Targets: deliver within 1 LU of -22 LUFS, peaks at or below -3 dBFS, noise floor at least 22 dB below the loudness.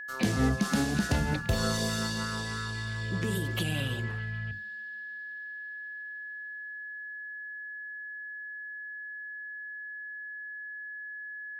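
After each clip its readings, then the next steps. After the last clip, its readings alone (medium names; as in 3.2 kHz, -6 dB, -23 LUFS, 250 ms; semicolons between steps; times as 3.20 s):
steady tone 1.7 kHz; tone level -38 dBFS; loudness -33.5 LUFS; peak level -16.0 dBFS; loudness target -22.0 LUFS
-> band-stop 1.7 kHz, Q 30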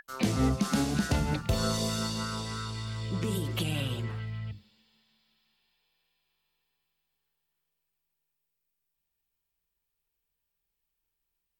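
steady tone not found; loudness -31.0 LUFS; peak level -16.5 dBFS; loudness target -22.0 LUFS
-> trim +9 dB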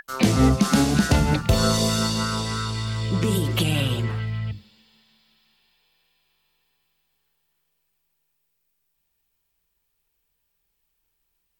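loudness -22.0 LUFS; peak level -7.5 dBFS; noise floor -74 dBFS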